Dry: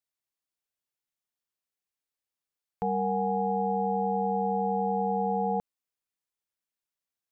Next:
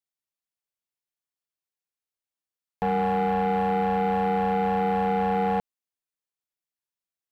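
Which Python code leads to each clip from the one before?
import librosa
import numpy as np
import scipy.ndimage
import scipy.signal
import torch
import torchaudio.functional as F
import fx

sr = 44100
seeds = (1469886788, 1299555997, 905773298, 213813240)

y = fx.leveller(x, sr, passes=2)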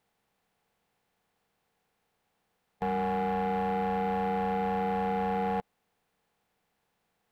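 y = fx.bin_compress(x, sr, power=0.6)
y = F.gain(torch.from_numpy(y), -6.0).numpy()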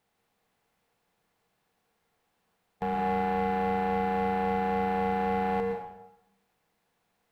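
y = fx.rev_plate(x, sr, seeds[0], rt60_s=0.87, hf_ratio=0.8, predelay_ms=100, drr_db=2.5)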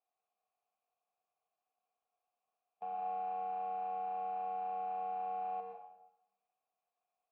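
y = fx.vowel_filter(x, sr, vowel='a')
y = F.gain(torch.from_numpy(y), -5.5).numpy()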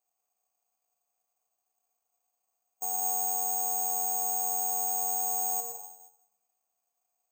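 y = (np.kron(scipy.signal.resample_poly(x, 1, 6), np.eye(6)[0]) * 6)[:len(x)]
y = F.gain(torch.from_numpy(y), 1.0).numpy()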